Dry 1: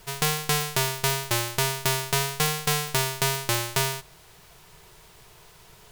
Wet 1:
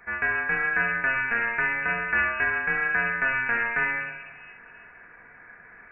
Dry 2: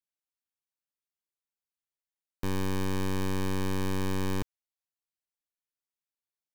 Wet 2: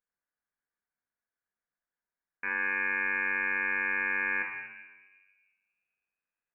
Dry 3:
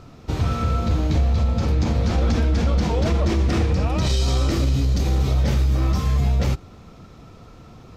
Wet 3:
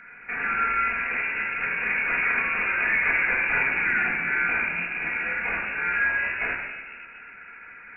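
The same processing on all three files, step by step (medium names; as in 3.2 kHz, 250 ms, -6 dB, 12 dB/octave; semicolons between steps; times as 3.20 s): high-pass 420 Hz 12 dB/octave; peaking EQ 1.1 kHz +12.5 dB 0.37 oct; saturation -16 dBFS; simulated room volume 1000 m³, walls mixed, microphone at 1.9 m; frequency inversion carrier 2.7 kHz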